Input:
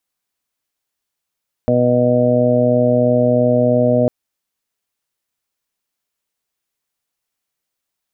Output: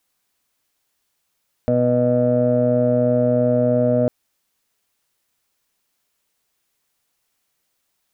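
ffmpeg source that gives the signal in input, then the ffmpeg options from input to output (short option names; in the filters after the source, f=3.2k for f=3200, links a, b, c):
-f lavfi -i "aevalsrc='0.112*sin(2*PI*123*t)+0.15*sin(2*PI*246*t)+0.0398*sin(2*PI*369*t)+0.141*sin(2*PI*492*t)+0.178*sin(2*PI*615*t)+0.0266*sin(2*PI*738*t)':d=2.4:s=44100"
-filter_complex "[0:a]asplit=2[a][b];[b]acontrast=31,volume=-2dB[c];[a][c]amix=inputs=2:normalize=0,alimiter=limit=-10dB:level=0:latency=1:release=24"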